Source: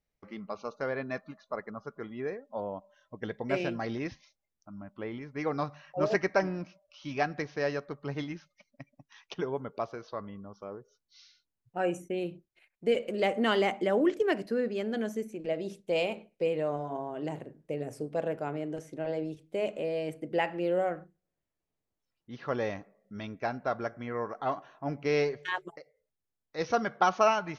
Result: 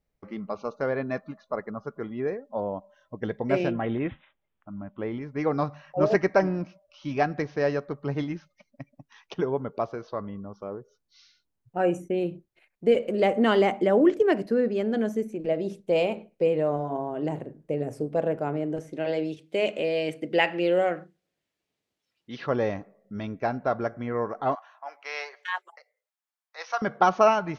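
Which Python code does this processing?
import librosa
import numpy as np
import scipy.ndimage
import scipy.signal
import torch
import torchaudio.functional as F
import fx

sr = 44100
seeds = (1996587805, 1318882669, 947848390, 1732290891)

y = fx.resample_bad(x, sr, factor=6, down='none', up='filtered', at=(3.71, 5.03))
y = fx.weighting(y, sr, curve='D', at=(18.93, 22.45), fade=0.02)
y = fx.highpass(y, sr, hz=840.0, slope=24, at=(24.55, 26.82))
y = fx.tilt_shelf(y, sr, db=4.0, hz=1400.0)
y = F.gain(torch.from_numpy(y), 3.0).numpy()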